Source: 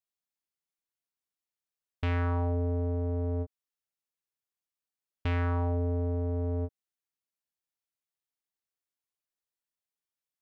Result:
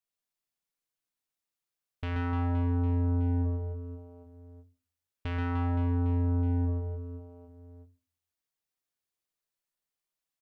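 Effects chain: limiter -26 dBFS, peak gain reduction 4.5 dB; reverse bouncing-ball echo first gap 0.13 s, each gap 1.3×, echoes 5; on a send at -11.5 dB: reverb RT60 0.30 s, pre-delay 4 ms

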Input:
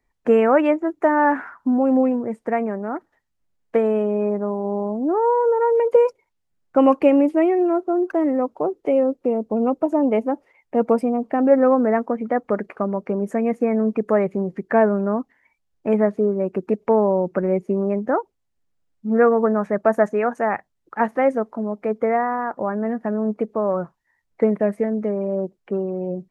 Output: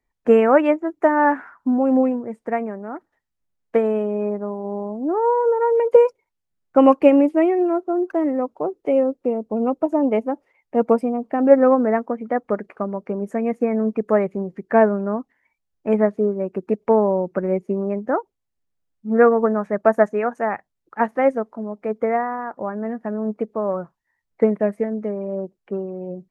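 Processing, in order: upward expander 1.5:1, over -27 dBFS; gain +3.5 dB

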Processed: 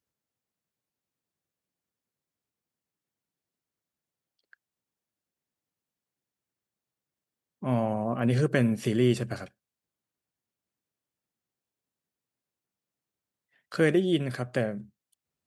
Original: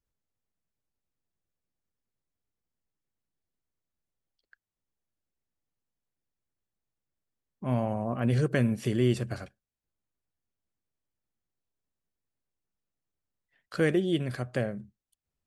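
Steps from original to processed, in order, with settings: HPF 120 Hz 12 dB/oct; gain +2.5 dB

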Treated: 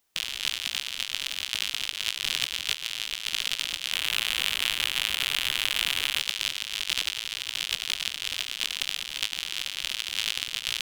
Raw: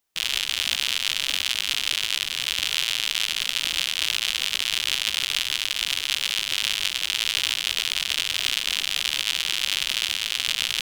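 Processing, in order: 3.9–6.19 dynamic EQ 5400 Hz, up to -8 dB, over -39 dBFS, Q 1; negative-ratio compressor -30 dBFS, ratio -0.5

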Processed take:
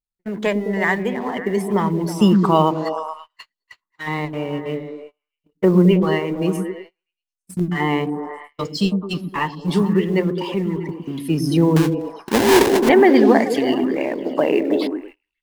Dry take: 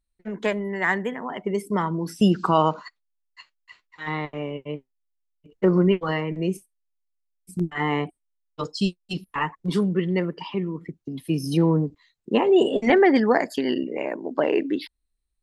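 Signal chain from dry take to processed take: G.711 law mismatch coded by mu; dynamic EQ 1400 Hz, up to -7 dB, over -45 dBFS, Q 4.6; 11.76–12.89 sample-rate reducer 1300 Hz, jitter 20%; on a send: delay with a stepping band-pass 0.107 s, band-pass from 220 Hz, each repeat 0.7 oct, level -2 dB; on the sum: gate -41 dBFS, range -28 dB; gain +3.5 dB

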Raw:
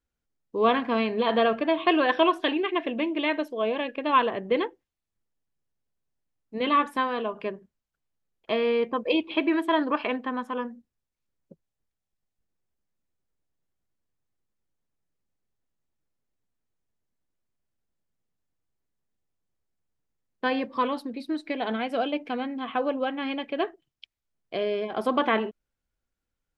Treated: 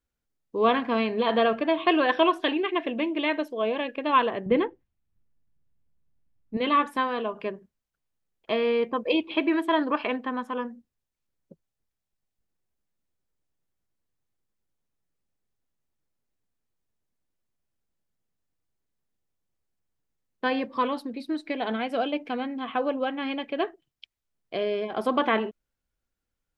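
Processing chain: 4.46–6.57 tone controls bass +13 dB, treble -13 dB

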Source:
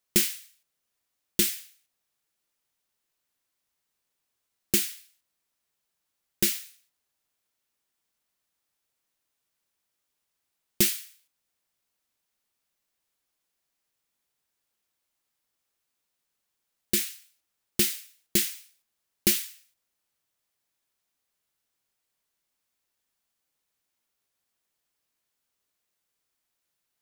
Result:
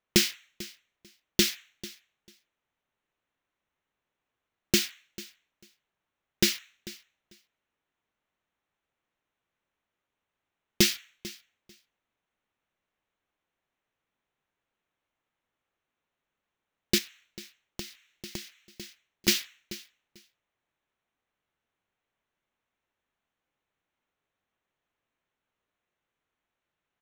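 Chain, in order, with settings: Wiener smoothing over 9 samples; resonant high shelf 7100 Hz -9 dB, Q 1.5; feedback echo 0.444 s, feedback 16%, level -18.5 dB; 16.98–19.28 compressor 8:1, threshold -40 dBFS, peak gain reduction 19 dB; gain +3.5 dB

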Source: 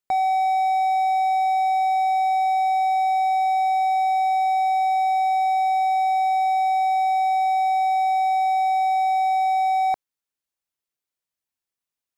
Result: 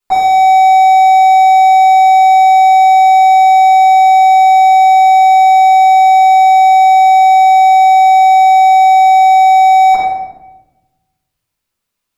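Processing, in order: reverb RT60 1.1 s, pre-delay 3 ms, DRR -12 dB; gain -1.5 dB

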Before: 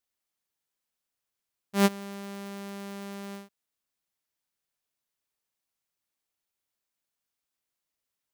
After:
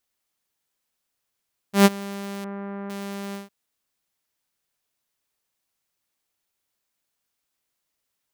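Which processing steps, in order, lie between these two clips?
2.44–2.9 LPF 1800 Hz 24 dB/oct; gain +6.5 dB

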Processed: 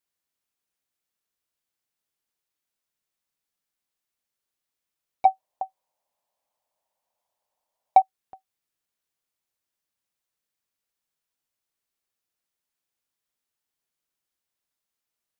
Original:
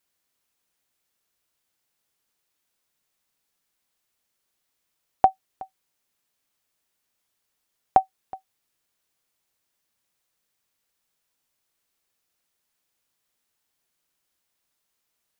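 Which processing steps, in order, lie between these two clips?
soft clip -14.5 dBFS, distortion -9 dB; 5.25–8.02 band shelf 730 Hz +16 dB 1.2 oct; gain -8.5 dB

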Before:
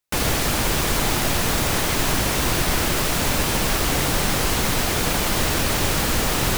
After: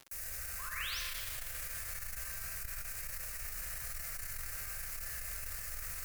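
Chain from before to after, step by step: high shelf 6700 Hz +10 dB; fixed phaser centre 840 Hz, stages 6; painted sound rise, 0.64–1.09, 900–5900 Hz -17 dBFS; passive tone stack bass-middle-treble 10-0-10; resonator 160 Hz, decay 1.1 s, mix 80%; in parallel at -7.5 dB: bit-crush 7-bit; on the sum: limiter -34 dBFS, peak gain reduction 19.5 dB; reverb RT60 2.4 s, pre-delay 18 ms, DRR -5.5 dB; speed mistake 44.1 kHz file played as 48 kHz; crackle 110/s -41 dBFS; core saturation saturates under 100 Hz; gain +2 dB

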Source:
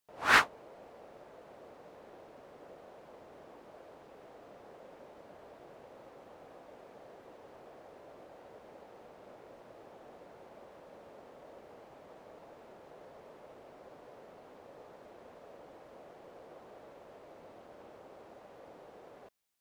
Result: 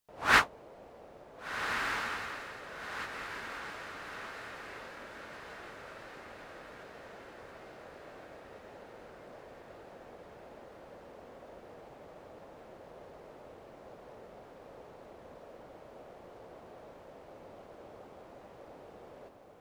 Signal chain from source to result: low shelf 110 Hz +9 dB; on a send: diffused feedback echo 1.531 s, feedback 55%, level -5.5 dB

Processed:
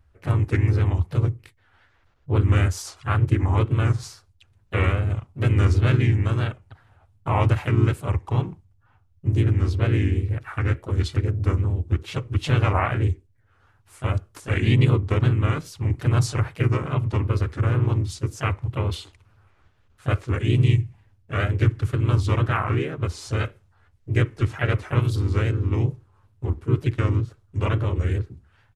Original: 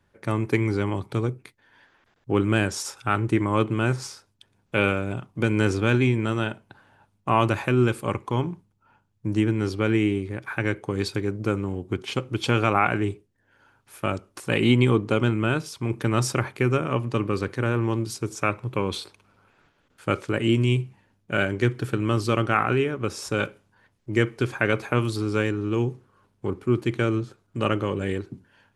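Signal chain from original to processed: resonant low shelf 130 Hz +13 dB, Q 1.5; wow and flutter 120 cents; harmoniser -3 st -2 dB, +3 st -8 dB; gain -5.5 dB

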